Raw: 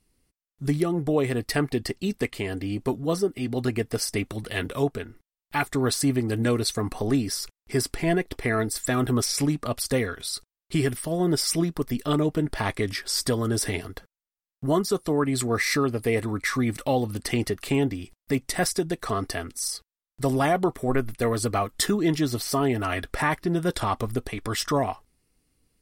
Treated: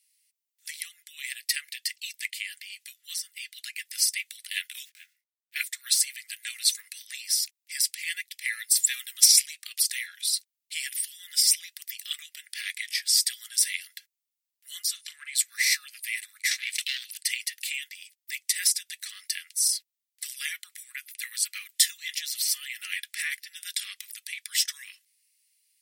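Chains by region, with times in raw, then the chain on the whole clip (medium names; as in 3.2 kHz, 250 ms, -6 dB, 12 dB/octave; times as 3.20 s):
4.85–5.56 s: block-companded coder 5-bit + treble shelf 2.1 kHz -9 dB + detune thickener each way 44 cents
7.90–9.51 s: tilt shelf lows -6.5 dB, about 940 Hz + upward expansion, over -33 dBFS
14.93–15.35 s: transient shaper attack +11 dB, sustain +2 dB + distance through air 53 m + doubling 39 ms -12 dB
16.51–17.11 s: frequency weighting D + transformer saturation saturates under 1.6 kHz
whole clip: steep high-pass 1.9 kHz 48 dB/octave; tilt EQ +2 dB/octave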